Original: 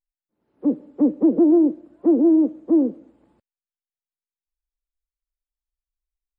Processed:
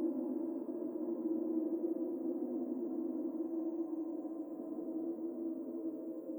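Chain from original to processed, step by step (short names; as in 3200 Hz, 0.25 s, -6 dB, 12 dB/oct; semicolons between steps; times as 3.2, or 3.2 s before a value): short-time reversal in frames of 31 ms; tilt +3.5 dB/oct; loudest bins only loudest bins 64; on a send: diffused feedback echo 0.485 s, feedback 44%, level -7 dB; on the sum: Paulstretch 18×, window 0.10 s, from 4.71; gain +17 dB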